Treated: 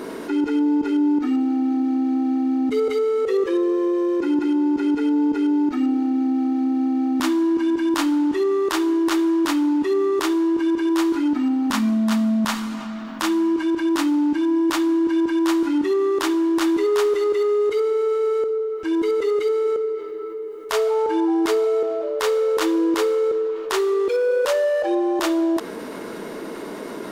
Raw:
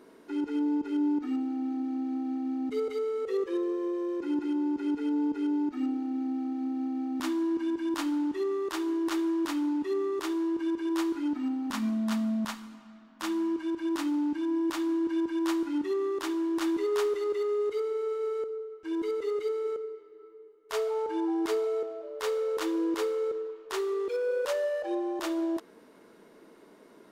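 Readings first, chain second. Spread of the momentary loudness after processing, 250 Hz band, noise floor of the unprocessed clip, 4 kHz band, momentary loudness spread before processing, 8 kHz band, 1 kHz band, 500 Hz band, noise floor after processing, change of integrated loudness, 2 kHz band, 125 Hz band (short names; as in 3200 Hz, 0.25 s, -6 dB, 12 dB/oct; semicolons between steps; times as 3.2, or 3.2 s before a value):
5 LU, +10.0 dB, -55 dBFS, +11.0 dB, 4 LU, +11.0 dB, +10.5 dB, +10.0 dB, -32 dBFS, +10.0 dB, +11.0 dB, n/a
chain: fast leveller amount 50%; gain +8 dB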